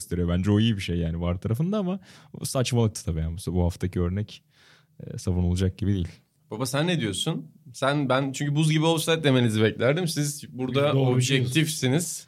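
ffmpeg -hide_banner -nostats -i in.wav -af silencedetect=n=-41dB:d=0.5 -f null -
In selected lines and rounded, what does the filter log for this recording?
silence_start: 4.37
silence_end: 5.00 | silence_duration: 0.63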